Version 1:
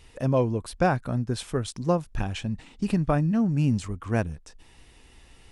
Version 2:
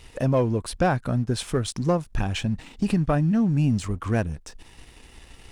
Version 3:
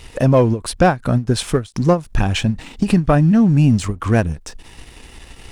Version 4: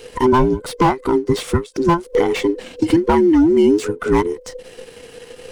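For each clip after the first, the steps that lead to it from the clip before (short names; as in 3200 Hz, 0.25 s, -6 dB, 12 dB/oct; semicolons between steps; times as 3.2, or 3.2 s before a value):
compressor 1.5:1, threshold -33 dBFS, peak gain reduction 6 dB; sample leveller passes 1; gain +3.5 dB
ending taper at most 250 dB/s; gain +8.5 dB
band inversion scrambler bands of 500 Hz; slew limiter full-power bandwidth 250 Hz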